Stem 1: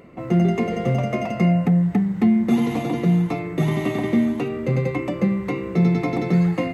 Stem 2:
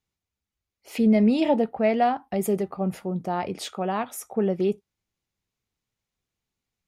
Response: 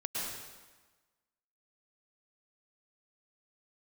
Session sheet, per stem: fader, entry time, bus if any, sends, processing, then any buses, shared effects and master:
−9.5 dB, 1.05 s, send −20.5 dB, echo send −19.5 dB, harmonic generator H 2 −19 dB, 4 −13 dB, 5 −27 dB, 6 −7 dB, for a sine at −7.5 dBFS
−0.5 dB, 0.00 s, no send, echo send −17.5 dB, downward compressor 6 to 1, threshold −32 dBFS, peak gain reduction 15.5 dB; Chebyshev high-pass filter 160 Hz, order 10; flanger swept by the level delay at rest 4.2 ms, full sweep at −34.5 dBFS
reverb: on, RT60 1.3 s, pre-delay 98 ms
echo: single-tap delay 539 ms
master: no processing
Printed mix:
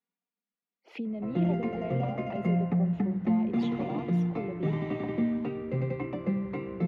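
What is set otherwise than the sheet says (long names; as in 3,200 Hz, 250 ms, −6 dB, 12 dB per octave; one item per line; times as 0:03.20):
stem 1: missing harmonic generator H 2 −19 dB, 4 −13 dB, 5 −27 dB, 6 −7 dB, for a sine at −7.5 dBFS
master: extra high-frequency loss of the air 280 metres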